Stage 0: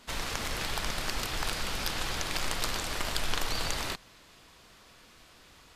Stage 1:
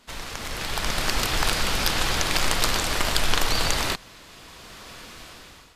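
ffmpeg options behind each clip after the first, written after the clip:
-af "dynaudnorm=f=330:g=5:m=16.5dB,volume=-1dB"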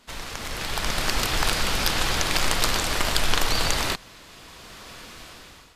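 -af anull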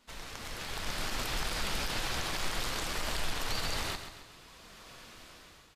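-af "alimiter=limit=-13.5dB:level=0:latency=1:release=24,flanger=delay=3.3:depth=9.3:regen=-59:speed=0.65:shape=triangular,aecho=1:1:134|268|402|536|670:0.335|0.154|0.0709|0.0326|0.015,volume=-5.5dB"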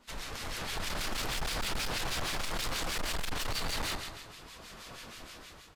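-filter_complex "[0:a]asoftclip=type=hard:threshold=-30dB,acrossover=split=1500[a][b];[a]aeval=exprs='val(0)*(1-0.7/2+0.7/2*cos(2*PI*6.3*n/s))':c=same[c];[b]aeval=exprs='val(0)*(1-0.7/2-0.7/2*cos(2*PI*6.3*n/s))':c=same[d];[c][d]amix=inputs=2:normalize=0,asoftclip=type=tanh:threshold=-35.5dB,volume=7.5dB"

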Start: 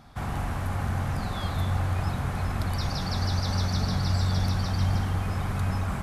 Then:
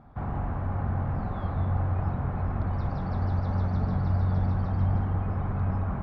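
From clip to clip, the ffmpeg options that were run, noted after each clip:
-af "lowpass=1.1k"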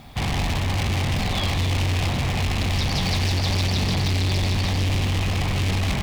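-af "asoftclip=type=hard:threshold=-28dB,aexciter=amount=7.8:drive=9.3:freq=2.2k,volume=8dB"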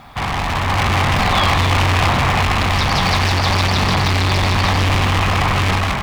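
-af "equalizer=f=1.2k:w=0.86:g=13.5,dynaudnorm=f=440:g=3:m=11.5dB,volume=-1dB"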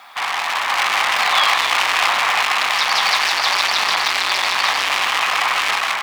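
-af "highpass=1k,volume=3dB"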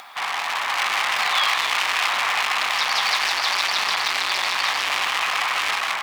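-filter_complex "[0:a]acrossover=split=1200[a][b];[a]alimiter=limit=-17.5dB:level=0:latency=1[c];[c][b]amix=inputs=2:normalize=0,acompressor=mode=upward:threshold=-33dB:ratio=2.5,volume=-4dB"

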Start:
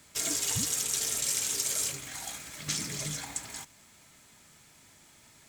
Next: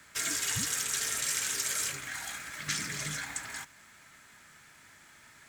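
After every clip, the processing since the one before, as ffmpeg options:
-filter_complex "[0:a]equalizer=f=1.6k:w=1.3:g=13,acrossover=split=320|1300|3300[a][b][c][d];[b]alimiter=level_in=15.5dB:limit=-24dB:level=0:latency=1,volume=-15.5dB[e];[a][e][c][d]amix=inputs=4:normalize=0,acontrast=21,volume=-7.5dB"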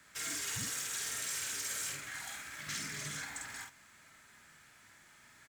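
-filter_complex "[0:a]asoftclip=type=tanh:threshold=-27.5dB,asplit=2[a][b];[b]adelay=49,volume=-2.5dB[c];[a][c]amix=inputs=2:normalize=0,volume=-6dB"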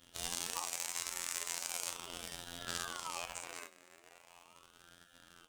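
-af "asubboost=boost=3.5:cutoff=250,afftfilt=real='hypot(re,im)*cos(PI*b)':imag='0':win_size=2048:overlap=0.75,aeval=exprs='val(0)*sin(2*PI*1000*n/s+1000*0.55/0.39*sin(2*PI*0.39*n/s))':c=same,volume=4.5dB"

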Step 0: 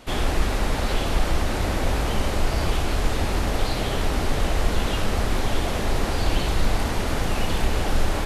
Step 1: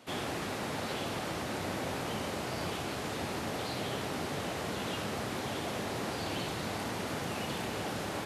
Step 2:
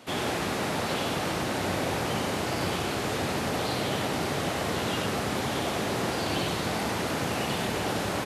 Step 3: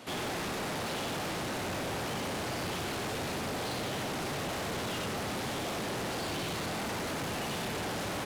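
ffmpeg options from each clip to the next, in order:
-af "highpass=f=110:w=0.5412,highpass=f=110:w=1.3066,volume=-8.5dB"
-af "aecho=1:1:96:0.531,volume=6dB"
-af "asoftclip=type=tanh:threshold=-34.5dB,volume=1.5dB"

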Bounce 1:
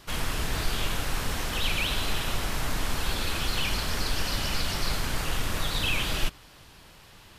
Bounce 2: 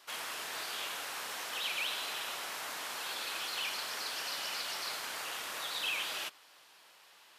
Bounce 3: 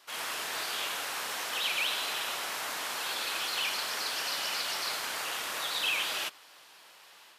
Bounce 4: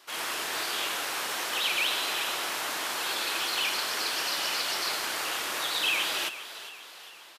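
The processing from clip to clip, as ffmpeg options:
-af "highpass=620,volume=-6dB"
-af "dynaudnorm=f=100:g=3:m=5dB"
-filter_complex "[0:a]equalizer=f=340:t=o:w=0.43:g=6,asplit=6[a][b][c][d][e][f];[b]adelay=403,afreqshift=56,volume=-13.5dB[g];[c]adelay=806,afreqshift=112,volume=-19.5dB[h];[d]adelay=1209,afreqshift=168,volume=-25.5dB[i];[e]adelay=1612,afreqshift=224,volume=-31.6dB[j];[f]adelay=2015,afreqshift=280,volume=-37.6dB[k];[a][g][h][i][j][k]amix=inputs=6:normalize=0,volume=3dB"

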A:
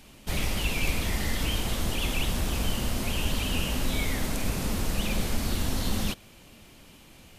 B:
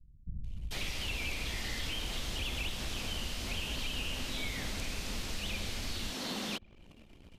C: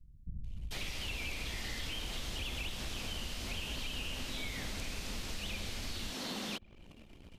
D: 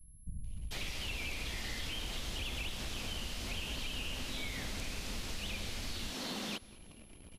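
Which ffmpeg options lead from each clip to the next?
-filter_complex "[0:a]acrossover=split=180[a][b];[b]adelay=440[c];[a][c]amix=inputs=2:normalize=0,acrossover=split=2100|6400[d][e][f];[d]acompressor=threshold=-37dB:ratio=4[g];[e]acompressor=threshold=-38dB:ratio=4[h];[f]acompressor=threshold=-57dB:ratio=4[i];[g][h][i]amix=inputs=3:normalize=0,anlmdn=0.00398"
-af "acompressor=threshold=-43dB:ratio=1.5,volume=1dB"
-af "aeval=exprs='val(0)+0.000794*sin(2*PI*11000*n/s)':c=same,aecho=1:1:199|398|597:0.0794|0.0373|0.0175"

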